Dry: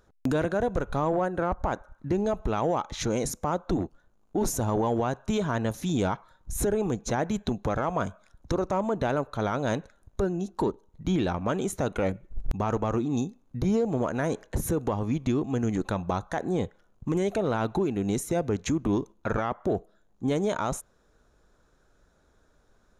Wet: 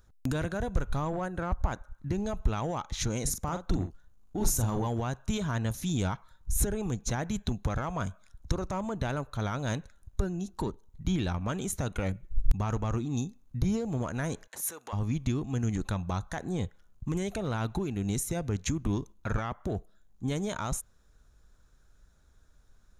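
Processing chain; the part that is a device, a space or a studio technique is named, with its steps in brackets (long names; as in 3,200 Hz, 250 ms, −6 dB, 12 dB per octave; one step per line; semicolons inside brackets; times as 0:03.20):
0:14.47–0:14.93: high-pass filter 780 Hz 12 dB per octave
smiley-face EQ (low-shelf EQ 150 Hz +8 dB; parametric band 450 Hz −8.5 dB 2.6 octaves; high-shelf EQ 6,700 Hz +6 dB)
0:03.23–0:04.87: double-tracking delay 43 ms −8 dB
level −1.5 dB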